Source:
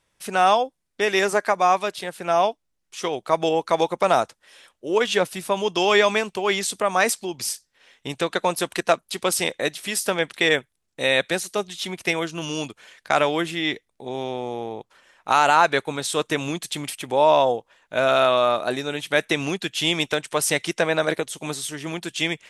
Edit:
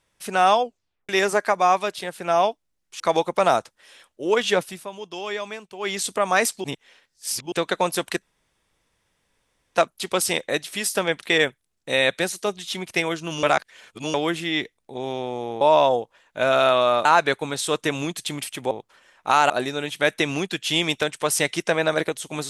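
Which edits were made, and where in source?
0.62 tape stop 0.47 s
3–3.64 cut
5.22–6.69 dip -12.5 dB, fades 0.30 s
7.28–8.16 reverse
8.86 insert room tone 1.53 s
12.54–13.25 reverse
14.72–15.51 swap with 17.17–18.61

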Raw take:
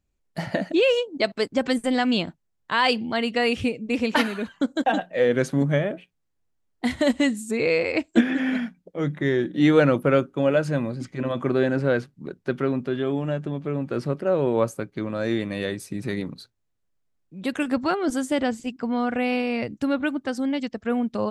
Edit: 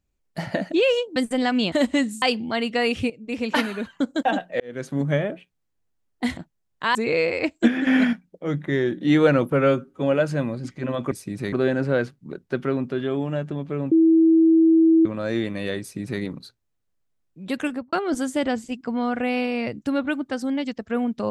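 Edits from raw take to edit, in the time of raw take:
1.16–1.69 cut
2.25–2.83 swap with 6.98–7.48
3.71–4.41 fade in equal-power, from -13 dB
5.21–5.75 fade in
8.4–8.66 gain +6.5 dB
10.05–10.38 stretch 1.5×
13.87–15.01 bleep 325 Hz -12 dBFS
15.76–16.17 copy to 11.48
17.59–17.88 studio fade out

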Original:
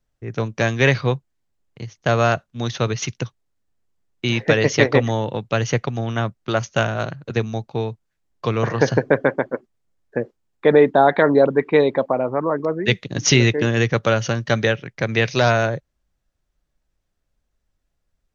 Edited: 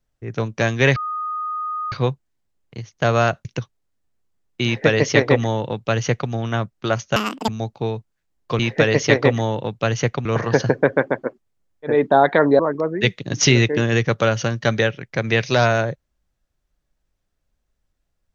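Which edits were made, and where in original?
0.96 add tone 1240 Hz -23 dBFS 0.96 s
2.49–3.09 cut
4.29–5.95 copy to 8.53
6.8–7.42 speed 192%
10.22–10.78 cut, crossfade 0.24 s
11.43–12.44 cut

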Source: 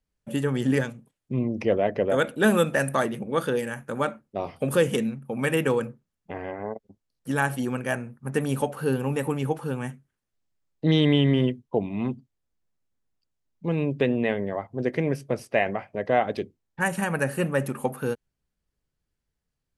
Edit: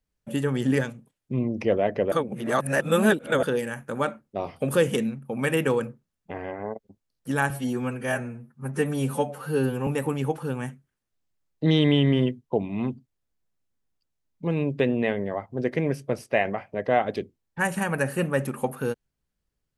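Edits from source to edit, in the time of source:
2.12–3.43 reverse
7.5–9.08 stretch 1.5×

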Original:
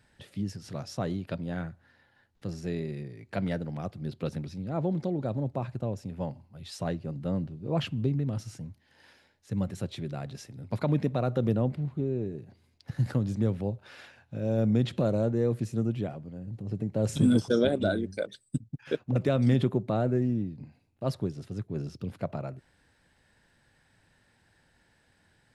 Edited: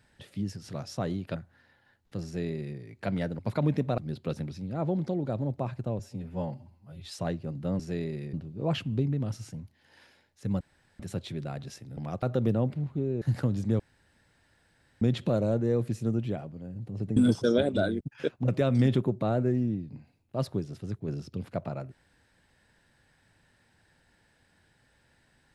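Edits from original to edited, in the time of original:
1.36–1.66 cut
2.55–3.09 copy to 7.4
3.69–3.94 swap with 10.65–11.24
5.95–6.66 stretch 1.5×
9.67 insert room tone 0.39 s
12.23–12.93 cut
13.51–14.73 room tone
16.88–17.23 cut
18.07–18.68 cut

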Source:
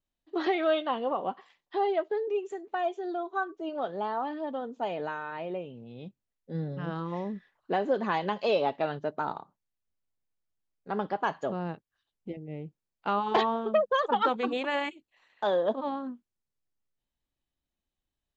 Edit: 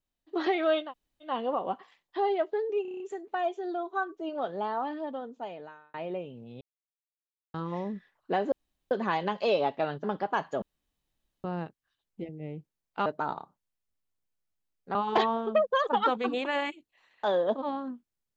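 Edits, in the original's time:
0.86 insert room tone 0.42 s, crossfade 0.16 s
2.4 stutter 0.03 s, 7 plays
4.32–5.34 fade out
6.01–6.94 mute
7.92 insert room tone 0.39 s
9.05–10.94 move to 13.14
11.52 insert room tone 0.82 s

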